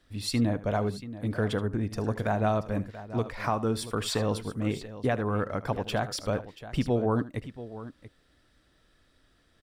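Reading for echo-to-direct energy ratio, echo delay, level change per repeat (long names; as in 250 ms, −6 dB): −12.0 dB, 76 ms, repeats not evenly spaced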